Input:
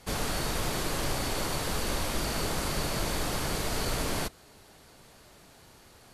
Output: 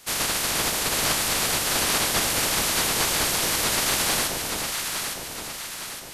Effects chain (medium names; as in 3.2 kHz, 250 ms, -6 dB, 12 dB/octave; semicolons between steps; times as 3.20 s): spectral peaks clipped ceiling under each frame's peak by 27 dB; echo whose repeats swap between lows and highs 430 ms, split 880 Hz, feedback 71%, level -2 dB; trim +4.5 dB